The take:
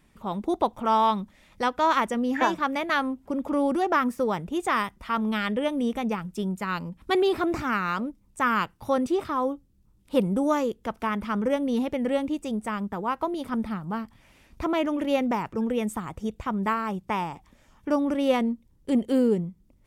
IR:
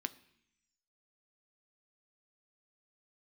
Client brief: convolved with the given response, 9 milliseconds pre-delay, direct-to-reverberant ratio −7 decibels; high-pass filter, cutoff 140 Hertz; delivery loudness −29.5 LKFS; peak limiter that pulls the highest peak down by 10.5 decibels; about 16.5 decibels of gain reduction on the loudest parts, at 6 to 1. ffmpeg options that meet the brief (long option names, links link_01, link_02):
-filter_complex "[0:a]highpass=140,acompressor=threshold=-36dB:ratio=6,alimiter=level_in=10dB:limit=-24dB:level=0:latency=1,volume=-10dB,asplit=2[link_01][link_02];[1:a]atrim=start_sample=2205,adelay=9[link_03];[link_02][link_03]afir=irnorm=-1:irlink=0,volume=7.5dB[link_04];[link_01][link_04]amix=inputs=2:normalize=0,volume=6dB"